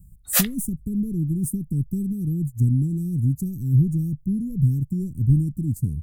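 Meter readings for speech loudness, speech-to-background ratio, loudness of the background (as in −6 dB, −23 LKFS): −24.0 LKFS, −1.0 dB, −23.0 LKFS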